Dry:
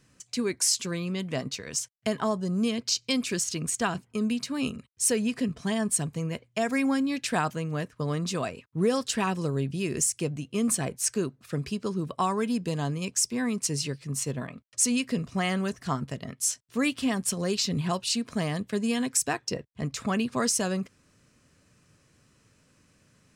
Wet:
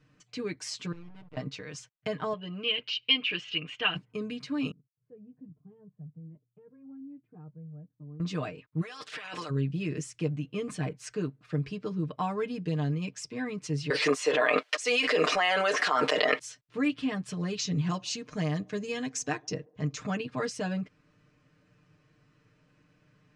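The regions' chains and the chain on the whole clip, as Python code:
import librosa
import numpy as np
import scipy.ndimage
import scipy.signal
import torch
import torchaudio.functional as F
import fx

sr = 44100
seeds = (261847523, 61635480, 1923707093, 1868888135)

y = fx.chain(x, sr, fx.peak_eq(hz=130.0, db=-7.5, octaves=0.85),
    fx.level_steps(step_db=14),
    fx.backlash(play_db=-34.5), at=(0.92, 1.37))
y = fx.chain(y, sr, fx.lowpass_res(hz=2900.0, q=9.1),
    fx.peak_eq(hz=130.0, db=-11.5, octaves=2.3), at=(2.33, 3.96))
y = fx.chain(y, sr, fx.ladder_bandpass(hz=180.0, resonance_pct=25),
    fx.comb_cascade(direction='rising', hz=1.2), at=(4.71, 8.2))
y = fx.spec_clip(y, sr, under_db=20, at=(8.81, 9.49), fade=0.02)
y = fx.highpass(y, sr, hz=880.0, slope=6, at=(8.81, 9.49), fade=0.02)
y = fx.over_compress(y, sr, threshold_db=-37.0, ratio=-1.0, at=(8.81, 9.49), fade=0.02)
y = fx.chain(y, sr, fx.highpass(hz=470.0, slope=24),
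    fx.env_flatten(amount_pct=100), at=(13.9, 16.39))
y = fx.chain(y, sr, fx.peak_eq(hz=6400.0, db=14.0, octaves=0.44),
    fx.echo_wet_bandpass(ms=70, feedback_pct=55, hz=490.0, wet_db=-24), at=(17.59, 20.17))
y = scipy.signal.sosfilt(scipy.signal.butter(2, 3100.0, 'lowpass', fs=sr, output='sos'), y)
y = fx.dynamic_eq(y, sr, hz=920.0, q=0.87, threshold_db=-42.0, ratio=4.0, max_db=-4)
y = y + 0.89 * np.pad(y, (int(6.6 * sr / 1000.0), 0))[:len(y)]
y = y * 10.0 ** (-4.0 / 20.0)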